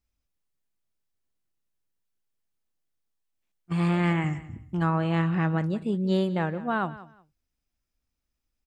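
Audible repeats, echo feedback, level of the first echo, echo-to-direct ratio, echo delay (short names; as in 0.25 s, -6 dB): 2, 21%, -17.0 dB, -17.0 dB, 0.182 s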